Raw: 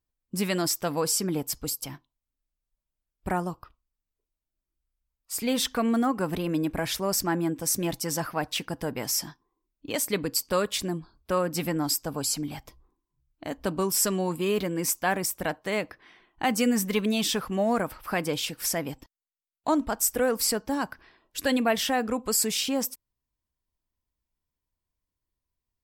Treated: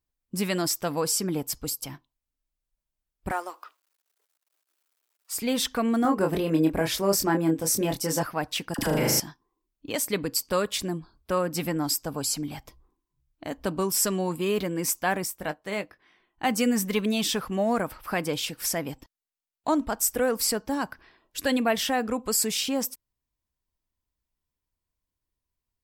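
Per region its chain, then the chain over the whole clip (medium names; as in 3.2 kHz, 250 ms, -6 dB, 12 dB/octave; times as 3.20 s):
3.31–5.34 s: companding laws mixed up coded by mu + Bessel high-pass 580 Hz, order 8 + peaking EQ 1.4 kHz +2.5 dB 0.4 oct
6.02–8.23 s: peaking EQ 450 Hz +6 dB 0.92 oct + doubling 25 ms -4.5 dB
8.74–9.20 s: phase dispersion lows, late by 46 ms, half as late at 970 Hz + flutter echo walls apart 6.6 m, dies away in 1.4 s + level flattener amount 70%
15.24–16.47 s: doubling 20 ms -10.5 dB + upward expansion, over -36 dBFS
whole clip: none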